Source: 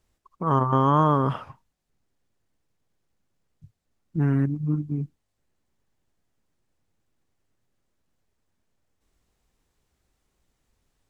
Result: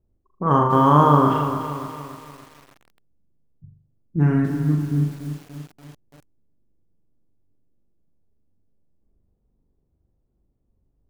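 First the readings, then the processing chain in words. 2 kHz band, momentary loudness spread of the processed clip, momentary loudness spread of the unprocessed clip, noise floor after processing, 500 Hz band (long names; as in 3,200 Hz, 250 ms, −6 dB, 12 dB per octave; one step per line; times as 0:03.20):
+6.0 dB, 19 LU, 14 LU, −70 dBFS, +5.5 dB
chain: low-pass that shuts in the quiet parts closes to 390 Hz, open at −20 dBFS
on a send: flutter between parallel walls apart 7 metres, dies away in 0.55 s
on the sum: feedback echo at a low word length 290 ms, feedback 55%, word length 7 bits, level −9.5 dB
level +3.5 dB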